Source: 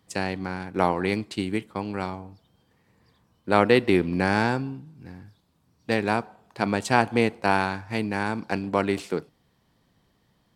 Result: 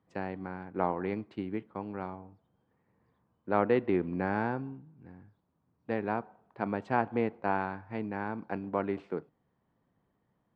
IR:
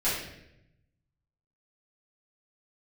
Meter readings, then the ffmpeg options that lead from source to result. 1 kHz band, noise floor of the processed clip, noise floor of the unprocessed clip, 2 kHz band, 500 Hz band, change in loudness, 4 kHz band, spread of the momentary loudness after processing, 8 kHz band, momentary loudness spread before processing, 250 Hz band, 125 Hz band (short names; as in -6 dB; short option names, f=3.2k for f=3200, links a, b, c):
-7.5 dB, -77 dBFS, -67 dBFS, -11.5 dB, -7.5 dB, -8.5 dB, under -20 dB, 12 LU, under -30 dB, 14 LU, -8.0 dB, -9.5 dB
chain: -af "lowpass=1.5k,lowshelf=f=79:g=-8.5,volume=-7dB"